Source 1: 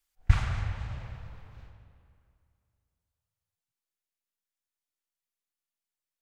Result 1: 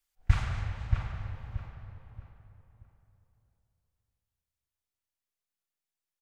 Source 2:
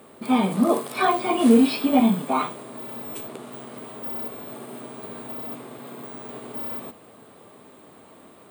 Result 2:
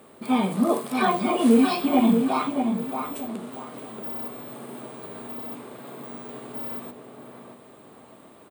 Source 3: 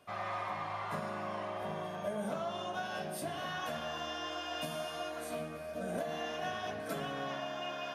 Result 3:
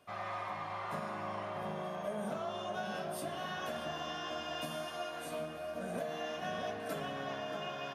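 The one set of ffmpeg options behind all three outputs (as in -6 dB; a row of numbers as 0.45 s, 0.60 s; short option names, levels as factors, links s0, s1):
-filter_complex "[0:a]asplit=2[s0][s1];[s1]adelay=629,lowpass=f=2000:p=1,volume=0.562,asplit=2[s2][s3];[s3]adelay=629,lowpass=f=2000:p=1,volume=0.32,asplit=2[s4][s5];[s5]adelay=629,lowpass=f=2000:p=1,volume=0.32,asplit=2[s6][s7];[s7]adelay=629,lowpass=f=2000:p=1,volume=0.32[s8];[s0][s2][s4][s6][s8]amix=inputs=5:normalize=0,volume=0.794"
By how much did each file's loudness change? -2.5 LU, -1.0 LU, -1.0 LU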